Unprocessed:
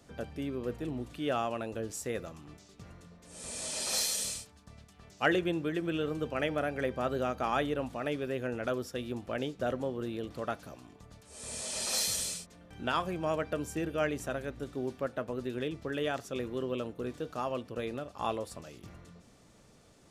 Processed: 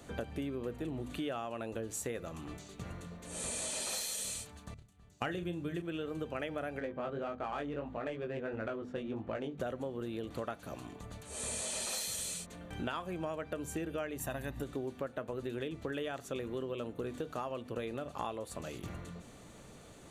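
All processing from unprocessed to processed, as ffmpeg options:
ffmpeg -i in.wav -filter_complex "[0:a]asettb=1/sr,asplit=3[link_01][link_02][link_03];[link_01]atrim=end=4.744[link_04];[link_02]atrim=start=4.74:end=5.82,asetpts=PTS-STARTPTS,afade=type=in:duration=0.004:curve=qsin,afade=type=out:start_time=1.076:duration=0.004:curve=qsin,bass=frequency=250:gain=10,treble=frequency=4000:gain=5,agate=range=-20dB:threshold=-41dB:ratio=16:release=100:detection=peak,asplit=2[link_05][link_06];[link_06]adelay=34,volume=-9dB[link_07];[link_05][link_07]amix=inputs=2:normalize=0,atrim=end_sample=47628[link_08];[link_03]atrim=start=5.816[link_09];[link_04][link_08]acrossfade=duration=0.004:curve1=hsin:curve2=qsin[link_10];[link_10][link_09]acrossfade=duration=0.004:curve1=qsin:curve2=hsin,asettb=1/sr,asplit=3[link_11][link_12][link_13];[link_11]atrim=end=6.794[link_14];[link_12]atrim=start=6.79:end=9.58,asetpts=PTS-STARTPTS,afade=type=in:duration=0.004:curve=qsin,afade=type=out:start_time=2.786:duration=0.004:curve=qsin,adynamicsmooth=sensitivity=3.5:basefreq=1900,flanger=delay=18.5:depth=2.6:speed=1.6[link_15];[link_13]atrim=start=9.576[link_16];[link_14][link_15]acrossfade=duration=0.004:curve1=hsin:curve2=qsin[link_17];[link_17][link_16]acrossfade=duration=0.004:curve1=qsin:curve2=hsin,asettb=1/sr,asplit=3[link_18][link_19][link_20];[link_18]atrim=end=14.184[link_21];[link_19]atrim=start=14.18:end=14.62,asetpts=PTS-STARTPTS,afade=type=in:duration=0.004:curve=qsin,afade=type=out:start_time=0.436:duration=0.004:curve=qsin,equalizer=frequency=13000:width=1.4:gain=13,aecho=1:1:1.1:0.55,atrim=end_sample=19404[link_22];[link_20]atrim=start=14.616[link_23];[link_21][link_22]acrossfade=duration=0.004:curve1=hsin:curve2=qsin[link_24];[link_24][link_23]acrossfade=duration=0.004:curve1=qsin:curve2=hsin,equalizer=frequency=5200:width=6.9:gain=-12.5,bandreject=frequency=50:width_type=h:width=6,bandreject=frequency=100:width_type=h:width=6,bandreject=frequency=150:width_type=h:width=6,bandreject=frequency=200:width_type=h:width=6,bandreject=frequency=250:width_type=h:width=6,acompressor=threshold=-42dB:ratio=10,volume=7dB" out.wav

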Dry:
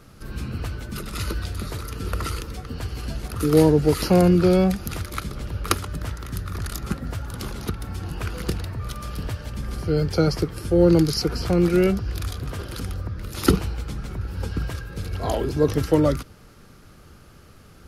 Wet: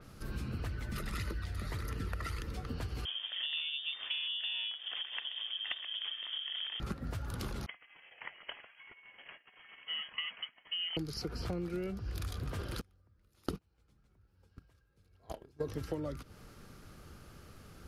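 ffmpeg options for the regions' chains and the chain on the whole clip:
ffmpeg -i in.wav -filter_complex "[0:a]asettb=1/sr,asplit=3[link_01][link_02][link_03];[link_01]atrim=end=0.664[link_04];[link_02]atrim=start=0.66:end=2.5,asetpts=PTS-STARTPTS,afade=type=in:duration=0.004:curve=qsin,afade=type=out:start_time=1.836:duration=0.004:curve=qsin,equalizer=frequency=1900:width_type=o:width=0.31:gain=9,aphaser=in_gain=1:out_gain=1:delay=1.7:decay=0.32:speed=1.6:type=triangular[link_05];[link_03]atrim=start=2.496[link_06];[link_04][link_05]acrossfade=duration=0.004:curve1=hsin:curve2=qsin[link_07];[link_07][link_06]acrossfade=duration=0.004:curve1=qsin:curve2=hsin,asettb=1/sr,asplit=3[link_08][link_09][link_10];[link_08]atrim=end=3.054[link_11];[link_09]atrim=start=3.05:end=6.8,asetpts=PTS-STARTPTS,afade=type=in:duration=0.004:curve=qsin,afade=type=out:start_time=3.746:duration=0.004:curve=qsin,aeval=exprs='val(0)*sin(2*PI*430*n/s)':channel_layout=same,lowpass=frequency=3100:width_type=q:width=0.5098,lowpass=frequency=3100:width_type=q:width=0.6013,lowpass=frequency=3100:width_type=q:width=0.9,lowpass=frequency=3100:width_type=q:width=2.563,afreqshift=-3600,equalizer=frequency=97:width=0.42:gain=-13.5[link_12];[link_10]atrim=start=6.796[link_13];[link_11][link_12]acrossfade=duration=0.004:curve1=hsin:curve2=qsin[link_14];[link_14][link_13]acrossfade=duration=0.004:curve1=qsin:curve2=hsin,asettb=1/sr,asplit=3[link_15][link_16][link_17];[link_15]atrim=end=7.664[link_18];[link_16]atrim=start=7.66:end=10.97,asetpts=PTS-STARTPTS,afade=type=in:duration=0.004:curve=qsin,afade=type=out:start_time=3.306:duration=0.004:curve=qsin,agate=range=-33dB:threshold=-24dB:ratio=3:release=100:detection=peak,highpass=690,lowpass=frequency=2900:width_type=q:width=0.5098,lowpass=frequency=2900:width_type=q:width=0.6013,lowpass=frequency=2900:width_type=q:width=0.9,lowpass=frequency=2900:width_type=q:width=2.563,afreqshift=-3400[link_19];[link_17]atrim=start=10.966[link_20];[link_18][link_19]acrossfade=duration=0.004:curve1=hsin:curve2=qsin[link_21];[link_21][link_20]acrossfade=duration=0.004:curve1=qsin:curve2=hsin,asettb=1/sr,asplit=3[link_22][link_23][link_24];[link_22]atrim=end=12.814[link_25];[link_23]atrim=start=12.81:end=15.68,asetpts=PTS-STARTPTS,afade=type=in:duration=0.004:curve=qsin,afade=type=out:start_time=2.866:duration=0.004:curve=qsin,bandreject=frequency=60:width_type=h:width=6,bandreject=frequency=120:width_type=h:width=6,bandreject=frequency=180:width_type=h:width=6,bandreject=frequency=240:width_type=h:width=6,bandreject=frequency=300:width_type=h:width=6,agate=range=-32dB:threshold=-21dB:ratio=16:release=100:detection=peak[link_26];[link_24]atrim=start=15.676[link_27];[link_25][link_26]acrossfade=duration=0.004:curve1=hsin:curve2=qsin[link_28];[link_28][link_27]acrossfade=duration=0.004:curve1=qsin:curve2=hsin,acompressor=threshold=-29dB:ratio=12,adynamicequalizer=threshold=0.00224:dfrequency=4900:dqfactor=0.7:tfrequency=4900:tqfactor=0.7:attack=5:release=100:ratio=0.375:range=2.5:mode=cutabove:tftype=highshelf,volume=-5dB" out.wav

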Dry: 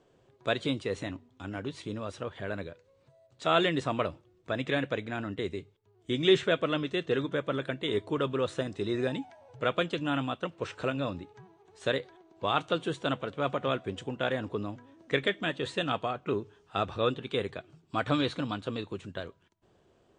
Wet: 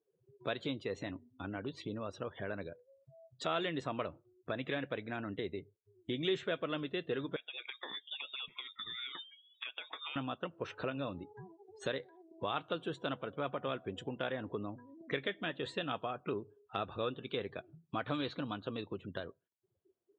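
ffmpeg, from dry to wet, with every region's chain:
ffmpeg -i in.wav -filter_complex "[0:a]asettb=1/sr,asplit=3[link_01][link_02][link_03];[link_01]atrim=end=7.364[link_04];[link_02]atrim=start=7.36:end=10.16,asetpts=PTS-STARTPTS,afade=type=in:duration=0.004:curve=qsin,afade=type=out:start_time=2.796:duration=0.004:curve=qsin,highpass=frequency=1400:poles=1,acompressor=threshold=-37dB:ratio=10:attack=3.2:release=140:knee=1:detection=peak,lowpass=frequency=3300:width_type=q:width=0.5098,lowpass=frequency=3300:width_type=q:width=0.6013,lowpass=frequency=3300:width_type=q:width=0.9,lowpass=frequency=3300:width_type=q:width=2.563,afreqshift=-3900[link_05];[link_03]atrim=start=10.156[link_06];[link_04][link_05]acrossfade=duration=0.004:curve1=hsin:curve2=qsin[link_07];[link_07][link_06]acrossfade=duration=0.004:curve1=qsin:curve2=hsin,afftdn=noise_reduction=33:noise_floor=-49,lowshelf=frequency=67:gain=-10,acompressor=threshold=-49dB:ratio=2,volume=5dB" out.wav

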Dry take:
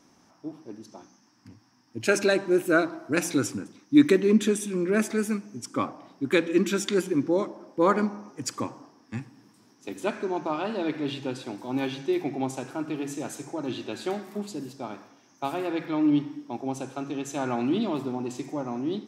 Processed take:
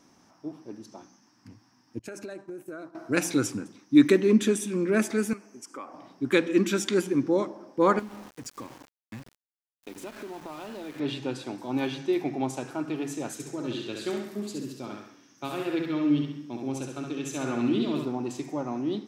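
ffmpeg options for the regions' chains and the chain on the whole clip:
ffmpeg -i in.wav -filter_complex "[0:a]asettb=1/sr,asplit=3[link_01][link_02][link_03];[link_01]atrim=end=1.994[link_04];[link_02]atrim=start=1.99:end=2.95,asetpts=PTS-STARTPTS,afade=type=in:duration=0.004:curve=qsin,afade=type=out:start_time=0.956:duration=0.004:curve=qsin,agate=range=-33dB:threshold=-27dB:ratio=3:release=100:detection=peak,equalizer=frequency=3200:width_type=o:width=1.5:gain=-8,acompressor=threshold=-35dB:ratio=16:attack=3.2:release=140:knee=1:detection=peak[link_05];[link_03]atrim=start=2.946[link_06];[link_04][link_05]acrossfade=duration=0.004:curve1=hsin:curve2=qsin[link_07];[link_07][link_06]acrossfade=duration=0.004:curve1=qsin:curve2=hsin,asettb=1/sr,asplit=3[link_08][link_09][link_10];[link_08]atrim=end=5.334[link_11];[link_09]atrim=start=5.33:end=5.94,asetpts=PTS-STARTPTS,afade=type=in:duration=0.004:curve=qsin,afade=type=out:start_time=0.606:duration=0.004:curve=qsin,highpass=400,equalizer=frequency=3700:width=3.5:gain=-10.5,acompressor=threshold=-40dB:ratio=2.5:attack=3.2:release=140:knee=1:detection=peak[link_12];[link_10]atrim=start=5.936[link_13];[link_11][link_12]acrossfade=duration=0.004:curve1=hsin:curve2=qsin[link_14];[link_14][link_13]acrossfade=duration=0.004:curve1=qsin:curve2=hsin,asettb=1/sr,asplit=3[link_15][link_16][link_17];[link_15]atrim=end=7.994[link_18];[link_16]atrim=start=7.99:end=11,asetpts=PTS-STARTPTS,afade=type=in:duration=0.004:curve=qsin,afade=type=out:start_time=3.006:duration=0.004:curve=qsin,acompressor=threshold=-37dB:ratio=4:attack=3.2:release=140:knee=1:detection=peak,aeval=exprs='val(0)*gte(abs(val(0)),0.00596)':channel_layout=same[link_19];[link_17]atrim=start=10.996[link_20];[link_18][link_19]acrossfade=duration=0.004:curve1=hsin:curve2=qsin[link_21];[link_21][link_20]acrossfade=duration=0.004:curve1=qsin:curve2=hsin,asettb=1/sr,asplit=3[link_22][link_23][link_24];[link_22]atrim=end=13.334[link_25];[link_23]atrim=start=13.33:end=18.05,asetpts=PTS-STARTPTS,afade=type=in:duration=0.004:curve=qsin,afade=type=out:start_time=4.716:duration=0.004:curve=qsin,equalizer=frequency=790:width=1.6:gain=-10,aecho=1:1:67|134|201|268|335:0.631|0.265|0.111|0.0467|0.0196,atrim=end_sample=208152[link_26];[link_24]atrim=start=18.046[link_27];[link_25][link_26]acrossfade=duration=0.004:curve1=hsin:curve2=qsin[link_28];[link_28][link_27]acrossfade=duration=0.004:curve1=qsin:curve2=hsin" out.wav

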